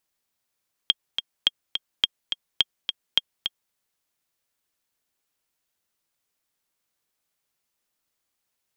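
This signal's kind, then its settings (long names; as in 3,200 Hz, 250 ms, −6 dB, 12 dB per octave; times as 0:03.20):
click track 211 BPM, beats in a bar 2, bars 5, 3,240 Hz, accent 7.5 dB −4.5 dBFS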